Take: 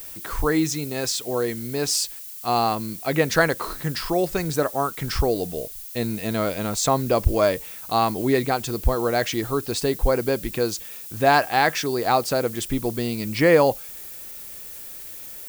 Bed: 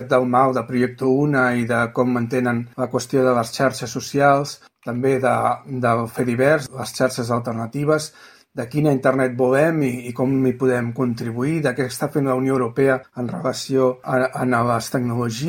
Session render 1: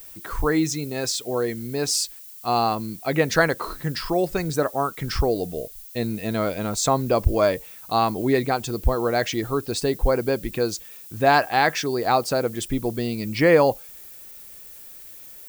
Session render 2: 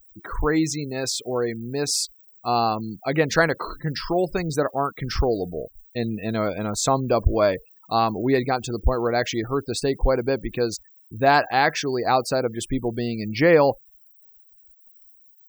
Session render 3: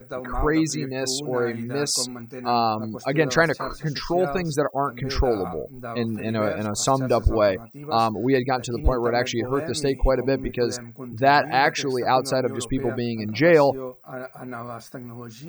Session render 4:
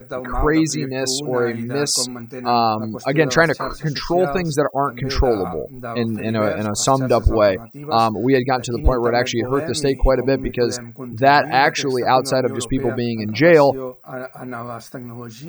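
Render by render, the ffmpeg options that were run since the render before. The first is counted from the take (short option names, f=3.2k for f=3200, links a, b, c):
-af "afftdn=nr=6:nf=-38"
-af "afftfilt=real='re*gte(hypot(re,im),0.0141)':imag='im*gte(hypot(re,im),0.0141)':win_size=1024:overlap=0.75,highshelf=f=9.8k:g=-2.5"
-filter_complex "[1:a]volume=-16dB[a];[0:a][a]amix=inputs=2:normalize=0"
-af "volume=4.5dB,alimiter=limit=-1dB:level=0:latency=1"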